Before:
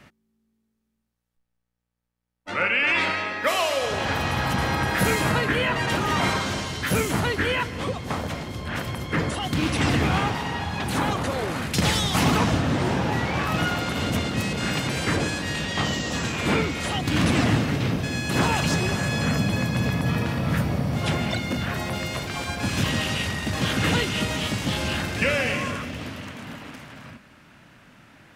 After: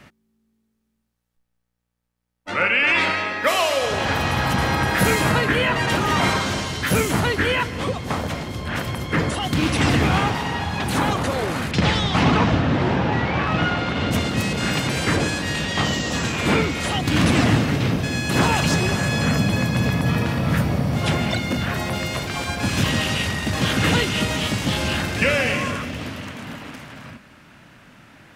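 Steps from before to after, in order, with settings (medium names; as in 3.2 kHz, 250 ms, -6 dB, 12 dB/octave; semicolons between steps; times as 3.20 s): 11.71–14.11 s: low-pass 3.8 kHz 12 dB/octave; trim +3.5 dB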